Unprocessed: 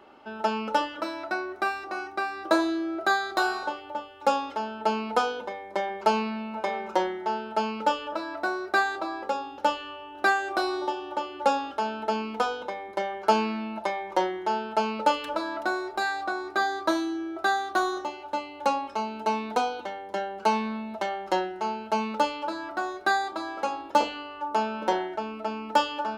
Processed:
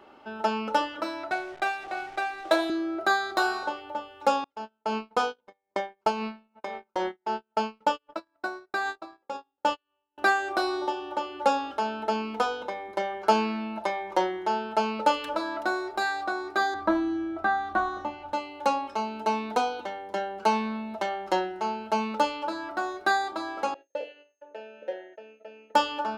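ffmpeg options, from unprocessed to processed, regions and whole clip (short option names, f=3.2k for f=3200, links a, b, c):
-filter_complex "[0:a]asettb=1/sr,asplit=3[a][b][c];[a]atrim=end=1.314[d];[b]atrim=start=1.31:end=2.7,asetpts=PTS-STARTPTS,afade=t=in:d=0.004:c=qsin,afade=t=out:st=1.386:d=0.004:c=qsin,highpass=f=260:w=0.5412,highpass=f=260:w=1.3066,equalizer=f=280:t=q:w=4:g=-8,equalizer=f=420:t=q:w=4:g=-5,equalizer=f=720:t=q:w=4:g=5,equalizer=f=1.1k:t=q:w=4:g=-9,equalizer=f=2.2k:t=q:w=4:g=4,equalizer=f=3.4k:t=q:w=4:g=9,lowpass=f=4.7k:w=0.5412,lowpass=f=4.7k:w=1.3066,acrusher=bits=8:dc=4:mix=0:aa=0.000001,adynamicsmooth=sensitivity=6:basefreq=2.6k[e];[c]atrim=start=2.696[f];[d][e]acrossfade=d=0.004:c1=hsin:c2=qsin[g];[g][f]acrossfade=d=0.004:c1=qsin:c2=hsin,asettb=1/sr,asplit=3[h][i][j];[h]atrim=end=4.444[k];[i]atrim=start=4.44:end=10.18,asetpts=PTS-STARTPTS,afade=t=in:d=0.004:c=qsin,afade=t=out:st=5.736:d=0.004:c=qsin,agate=range=-37dB:threshold=-31dB:ratio=16:release=100:detection=peak,tremolo=f=3.8:d=0.57[l];[j]atrim=start=10.176[m];[k][l]acrossfade=d=0.004:c1=hsin:c2=qsin[n];[n][m]acrossfade=d=0.004:c1=qsin:c2=hsin,asettb=1/sr,asplit=3[o][p][q];[o]atrim=end=16.744[r];[p]atrim=start=16.74:end=18.33,asetpts=PTS-STARTPTS,afade=t=in:d=0.004:c=qsin,afade=t=out:st=1.586:d=0.004:c=qsin,bandreject=f=380:w=5.2,acrossover=split=2600[s][t];[t]acompressor=threshold=-52dB:ratio=4:attack=1:release=60[u];[s][u]amix=inputs=2:normalize=0,bass=f=250:g=12,treble=f=4k:g=-7[v];[q]atrim=start=18.326[w];[r][v]acrossfade=d=0.004:c1=hsin:c2=qsin[x];[x][w]acrossfade=d=0.004:c1=qsin:c2=hsin,asettb=1/sr,asplit=3[y][z][aa];[y]atrim=end=23.744[ab];[z]atrim=start=23.74:end=25.75,asetpts=PTS-STARTPTS,afade=t=in:d=0.004:c=qsin,afade=t=out:st=2.006:d=0.004:c=qsin,agate=range=-32dB:threshold=-38dB:ratio=16:release=100:detection=peak,aeval=exprs='val(0)+0.00158*sin(2*PI*6400*n/s)':c=same,asplit=3[ac][ad][ae];[ac]bandpass=f=530:t=q:w=8,volume=0dB[af];[ad]bandpass=f=1.84k:t=q:w=8,volume=-6dB[ag];[ae]bandpass=f=2.48k:t=q:w=8,volume=-9dB[ah];[af][ag][ah]amix=inputs=3:normalize=0[ai];[aa]atrim=start=25.746[aj];[ab][ai]acrossfade=d=0.004:c1=hsin:c2=qsin[ak];[ak][aj]acrossfade=d=0.004:c1=qsin:c2=hsin"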